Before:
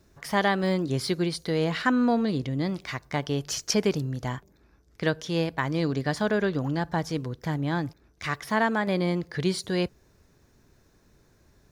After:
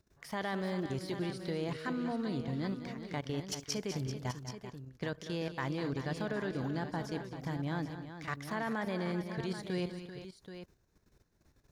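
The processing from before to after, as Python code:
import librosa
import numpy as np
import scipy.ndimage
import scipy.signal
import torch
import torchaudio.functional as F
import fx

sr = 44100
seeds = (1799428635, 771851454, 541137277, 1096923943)

y = fx.level_steps(x, sr, step_db=15)
y = fx.echo_multitap(y, sr, ms=(198, 238, 389, 780), db=(-12.0, -16.0, -11.0, -10.5))
y = y * 10.0 ** (-5.5 / 20.0)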